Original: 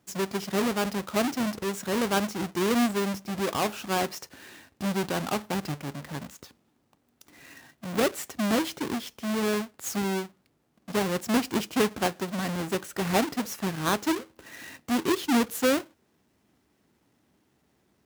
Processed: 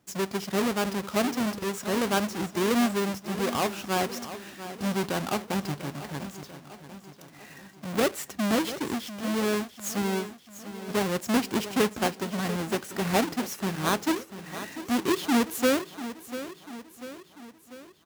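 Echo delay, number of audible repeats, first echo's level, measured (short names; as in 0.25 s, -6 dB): 0.693 s, 5, -13.0 dB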